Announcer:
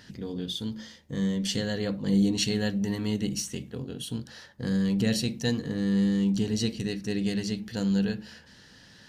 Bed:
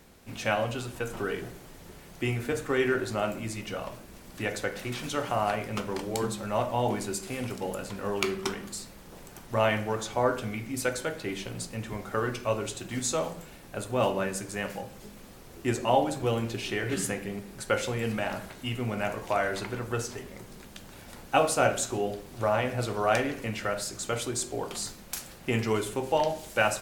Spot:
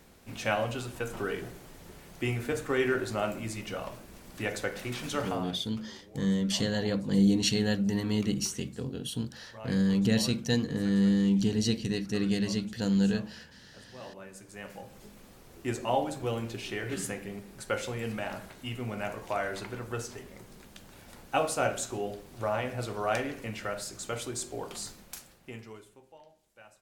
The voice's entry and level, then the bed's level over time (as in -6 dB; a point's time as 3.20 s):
5.05 s, 0.0 dB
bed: 5.27 s -1.5 dB
5.56 s -20.5 dB
14.00 s -20.5 dB
14.97 s -4.5 dB
25.00 s -4.5 dB
26.20 s -30 dB